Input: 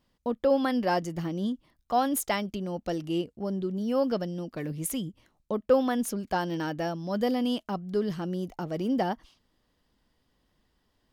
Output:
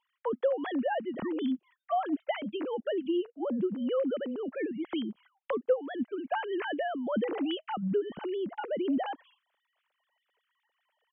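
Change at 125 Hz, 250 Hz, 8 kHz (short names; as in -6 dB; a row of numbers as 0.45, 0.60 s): -11.0 dB, -3.0 dB, under -40 dB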